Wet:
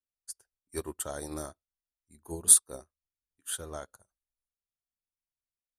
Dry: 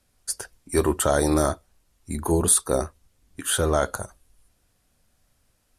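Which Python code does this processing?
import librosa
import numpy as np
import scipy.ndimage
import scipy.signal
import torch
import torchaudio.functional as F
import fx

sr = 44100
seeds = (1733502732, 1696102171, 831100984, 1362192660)

y = fx.high_shelf(x, sr, hz=4500.0, db=7.0)
y = fx.upward_expand(y, sr, threshold_db=-33.0, expansion=2.5)
y = y * librosa.db_to_amplitude(-3.5)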